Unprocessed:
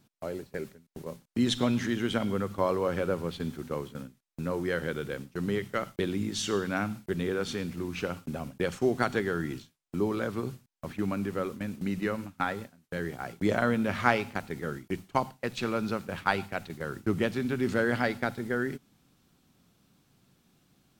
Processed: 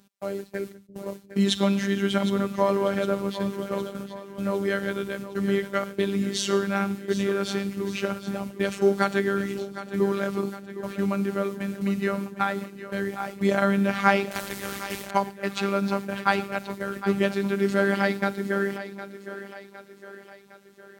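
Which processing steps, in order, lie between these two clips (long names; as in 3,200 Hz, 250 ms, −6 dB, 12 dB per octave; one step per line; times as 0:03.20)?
echo with a time of its own for lows and highs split 320 Hz, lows 347 ms, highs 760 ms, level −12.5 dB
phases set to zero 198 Hz
high-pass filter 54 Hz
0:14.31–0:15.11: every bin compressed towards the loudest bin 2 to 1
level +6.5 dB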